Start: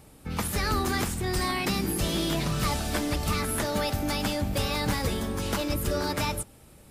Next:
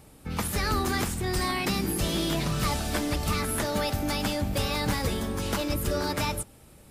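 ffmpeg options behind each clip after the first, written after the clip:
ffmpeg -i in.wav -af anull out.wav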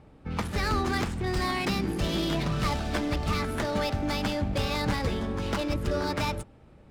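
ffmpeg -i in.wav -af "adynamicsmooth=sensitivity=6:basefreq=2400" out.wav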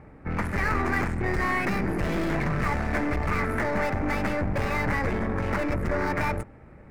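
ffmpeg -i in.wav -af "aeval=exprs='(tanh(35.5*val(0)+0.55)-tanh(0.55))/35.5':channel_layout=same,highshelf=frequency=2600:width_type=q:width=3:gain=-8,volume=7.5dB" out.wav

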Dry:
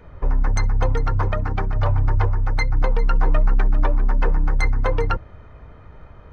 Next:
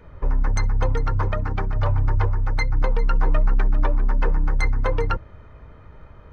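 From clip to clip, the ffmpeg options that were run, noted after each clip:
ffmpeg -i in.wav -af "bandreject=frequency=730:width=12,volume=-1.5dB" out.wav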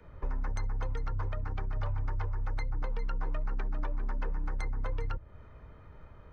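ffmpeg -i in.wav -filter_complex "[0:a]acrossover=split=110|290|1200[link_01][link_02][link_03][link_04];[link_01]acompressor=threshold=-23dB:ratio=4[link_05];[link_02]acompressor=threshold=-44dB:ratio=4[link_06];[link_03]acompressor=threshold=-38dB:ratio=4[link_07];[link_04]acompressor=threshold=-41dB:ratio=4[link_08];[link_05][link_06][link_07][link_08]amix=inputs=4:normalize=0,volume=-7dB" out.wav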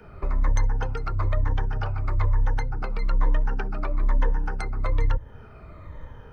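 ffmpeg -i in.wav -af "afftfilt=real='re*pow(10,10/40*sin(2*PI*(1.1*log(max(b,1)*sr/1024/100)/log(2)-(-1.1)*(pts-256)/sr)))':imag='im*pow(10,10/40*sin(2*PI*(1.1*log(max(b,1)*sr/1024/100)/log(2)-(-1.1)*(pts-256)/sr)))':win_size=1024:overlap=0.75,volume=8dB" out.wav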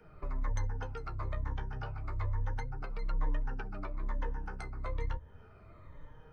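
ffmpeg -i in.wav -af "flanger=delay=6.4:depth=9.6:regen=37:speed=0.32:shape=sinusoidal,volume=-6.5dB" out.wav

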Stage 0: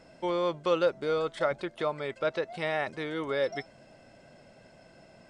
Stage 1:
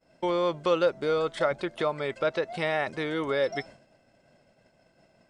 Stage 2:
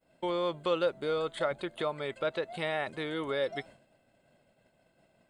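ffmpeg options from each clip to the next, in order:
ffmpeg -i in.wav -filter_complex "[0:a]agate=range=-33dB:threshold=-45dB:ratio=3:detection=peak,asplit=2[link_01][link_02];[link_02]acompressor=threshold=-35dB:ratio=6,volume=-0.5dB[link_03];[link_01][link_03]amix=inputs=2:normalize=0" out.wav
ffmpeg -i in.wav -af "aexciter=amount=1.3:drive=1.4:freq=3000,volume=-5dB" out.wav

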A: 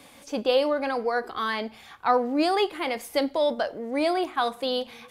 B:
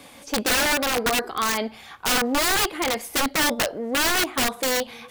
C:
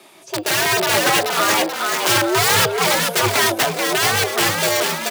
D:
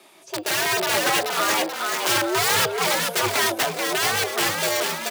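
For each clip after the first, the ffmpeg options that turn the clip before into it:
ffmpeg -i in.wav -af "aeval=exprs='(mod(10.6*val(0)+1,2)-1)/10.6':channel_layout=same,volume=4.5dB" out.wav
ffmpeg -i in.wav -filter_complex "[0:a]afreqshift=99,asplit=7[link_01][link_02][link_03][link_04][link_05][link_06][link_07];[link_02]adelay=432,afreqshift=62,volume=-4dB[link_08];[link_03]adelay=864,afreqshift=124,volume=-10.2dB[link_09];[link_04]adelay=1296,afreqshift=186,volume=-16.4dB[link_10];[link_05]adelay=1728,afreqshift=248,volume=-22.6dB[link_11];[link_06]adelay=2160,afreqshift=310,volume=-28.8dB[link_12];[link_07]adelay=2592,afreqshift=372,volume=-35dB[link_13];[link_01][link_08][link_09][link_10][link_11][link_12][link_13]amix=inputs=7:normalize=0,dynaudnorm=framelen=120:gausssize=9:maxgain=11.5dB,volume=-1dB" out.wav
ffmpeg -i in.wav -af "lowshelf=frequency=110:gain=-10,volume=-4.5dB" out.wav

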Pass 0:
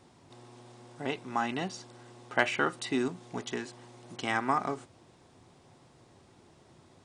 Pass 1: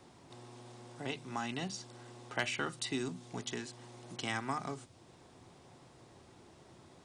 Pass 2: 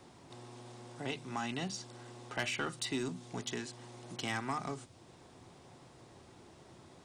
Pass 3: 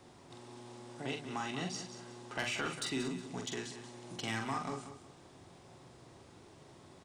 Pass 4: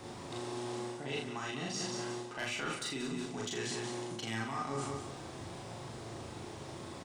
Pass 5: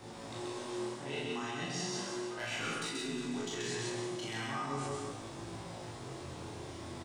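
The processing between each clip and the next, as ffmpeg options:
ffmpeg -i in.wav -filter_complex "[0:a]bandreject=frequency=50:width_type=h:width=6,bandreject=frequency=100:width_type=h:width=6,bandreject=frequency=150:width_type=h:width=6,bandreject=frequency=200:width_type=h:width=6,bandreject=frequency=250:width_type=h:width=6,acrossover=split=180|3000[link_01][link_02][link_03];[link_02]acompressor=threshold=-55dB:ratio=1.5[link_04];[link_01][link_04][link_03]amix=inputs=3:normalize=0,volume=1dB" out.wav
ffmpeg -i in.wav -af "asoftclip=type=tanh:threshold=-27.5dB,volume=1.5dB" out.wav
ffmpeg -i in.wav -filter_complex "[0:a]asplit=2[link_01][link_02];[link_02]adelay=45,volume=-5dB[link_03];[link_01][link_03]amix=inputs=2:normalize=0,asplit=2[link_04][link_05];[link_05]aecho=0:1:183|366|549:0.282|0.0846|0.0254[link_06];[link_04][link_06]amix=inputs=2:normalize=0,volume=-1.5dB" out.wav
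ffmpeg -i in.wav -filter_complex "[0:a]areverse,acompressor=threshold=-46dB:ratio=16,areverse,asplit=2[link_01][link_02];[link_02]adelay=36,volume=-2dB[link_03];[link_01][link_03]amix=inputs=2:normalize=0,volume=9.5dB" out.wav
ffmpeg -i in.wav -af "aecho=1:1:131.2|236.2:0.794|0.282,flanger=delay=17.5:depth=7.2:speed=0.37,volume=1dB" out.wav

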